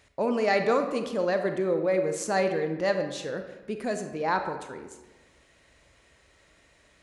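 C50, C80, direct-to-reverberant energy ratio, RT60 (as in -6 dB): 7.5 dB, 9.5 dB, 6.5 dB, 1.2 s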